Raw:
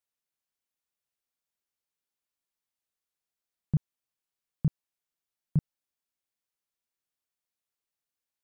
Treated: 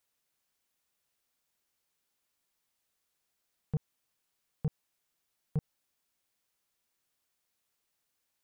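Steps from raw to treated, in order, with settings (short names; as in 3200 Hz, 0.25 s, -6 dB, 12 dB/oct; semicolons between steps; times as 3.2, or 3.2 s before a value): limiter -29 dBFS, peak gain reduction 11.5 dB; soft clip -34.5 dBFS, distortion -16 dB; gain +9 dB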